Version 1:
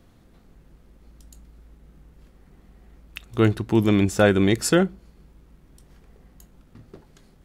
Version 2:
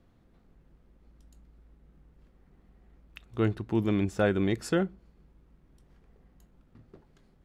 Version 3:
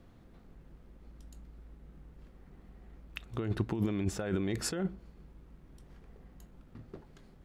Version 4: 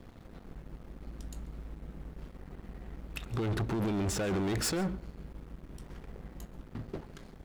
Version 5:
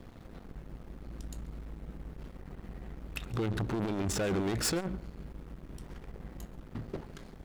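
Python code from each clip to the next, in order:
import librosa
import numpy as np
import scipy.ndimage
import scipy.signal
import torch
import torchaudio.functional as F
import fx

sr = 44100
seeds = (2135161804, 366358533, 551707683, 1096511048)

y1 = fx.high_shelf(x, sr, hz=4600.0, db=-11.0)
y1 = y1 * librosa.db_to_amplitude(-8.0)
y2 = fx.over_compress(y1, sr, threshold_db=-32.0, ratio=-1.0)
y3 = fx.leveller(y2, sr, passes=2)
y3 = 10.0 ** (-31.5 / 20.0) * np.tanh(y3 / 10.0 ** (-31.5 / 20.0))
y3 = y3 + 10.0 ** (-22.0 / 20.0) * np.pad(y3, (int(138 * sr / 1000.0), 0))[:len(y3)]
y3 = y3 * librosa.db_to_amplitude(3.0)
y4 = fx.transformer_sat(y3, sr, knee_hz=110.0)
y4 = y4 * librosa.db_to_amplitude(2.0)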